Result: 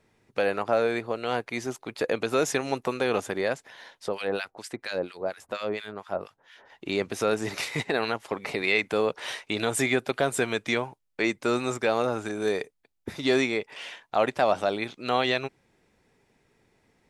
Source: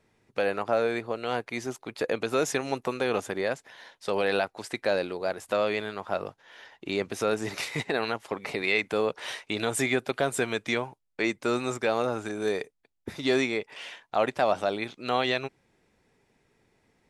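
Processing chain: 4.08–6.7 harmonic tremolo 4.3 Hz, depth 100%, crossover 1300 Hz; gain +1.5 dB

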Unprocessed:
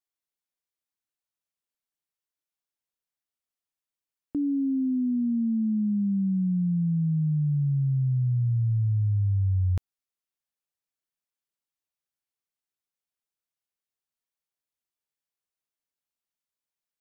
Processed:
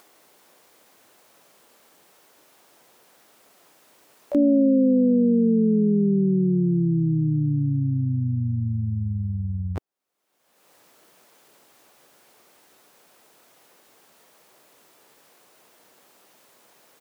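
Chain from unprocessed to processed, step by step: HPF 120 Hz 12 dB/oct; bell 500 Hz +13 dB 2.9 oct; upward compressor, threshold -29 dBFS; harmoniser -4 st -11 dB, +12 st -8 dB; gain -2 dB

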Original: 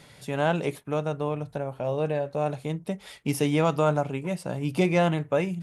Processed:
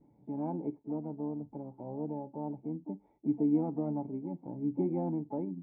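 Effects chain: vibrato 0.4 Hz 29 cents; harmoniser +7 st -10 dB; vocal tract filter u

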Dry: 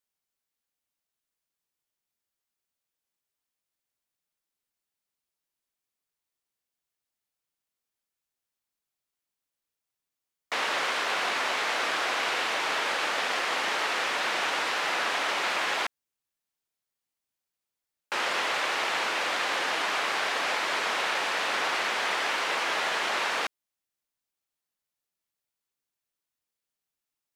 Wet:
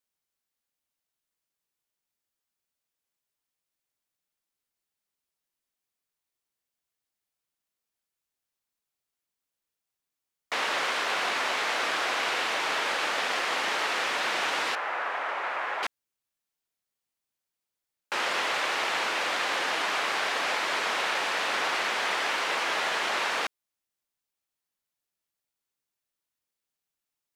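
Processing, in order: 14.75–15.83 three-band isolator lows -15 dB, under 430 Hz, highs -20 dB, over 2100 Hz

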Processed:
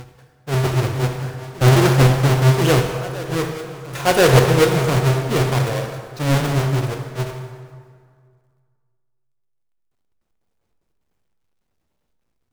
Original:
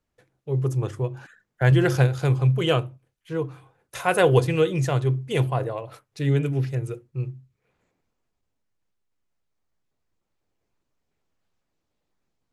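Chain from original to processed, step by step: half-waves squared off; on a send: reverse echo 1.037 s -18 dB; on the sum: plate-style reverb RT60 2 s, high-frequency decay 0.65×, DRR 3.5 dB; Doppler distortion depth 0.39 ms

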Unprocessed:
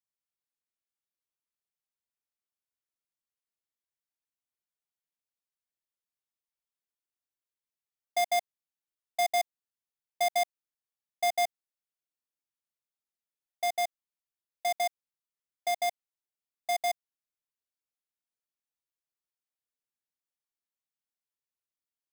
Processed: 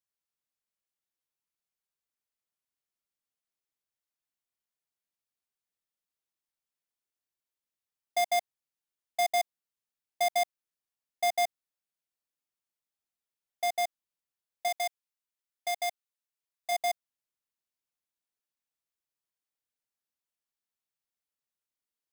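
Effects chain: 14.68–16.72 low shelf 470 Hz -10 dB

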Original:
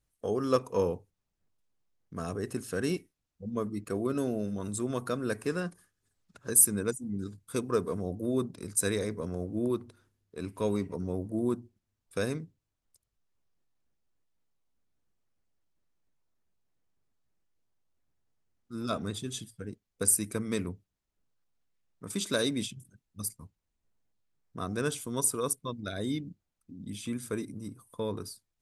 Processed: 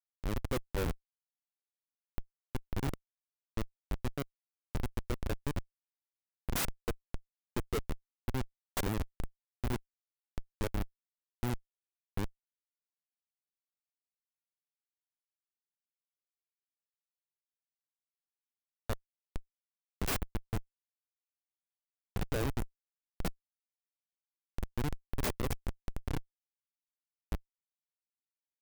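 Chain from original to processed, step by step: in parallel at 0 dB: compressor 16:1, threshold -40 dBFS, peak gain reduction 24.5 dB; on the sum: Schmitt trigger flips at -23 dBFS; clock jitter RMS 0.032 ms; gain +2 dB

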